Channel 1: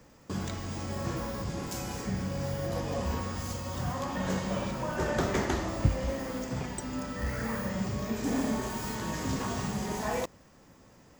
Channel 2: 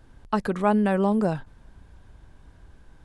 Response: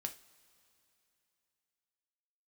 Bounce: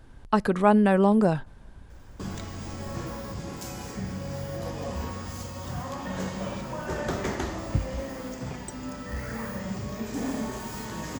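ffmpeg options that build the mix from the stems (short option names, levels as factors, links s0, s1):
-filter_complex "[0:a]adelay=1900,volume=0.891[s0];[1:a]volume=1.19,asplit=2[s1][s2];[s2]volume=0.106[s3];[2:a]atrim=start_sample=2205[s4];[s3][s4]afir=irnorm=-1:irlink=0[s5];[s0][s1][s5]amix=inputs=3:normalize=0"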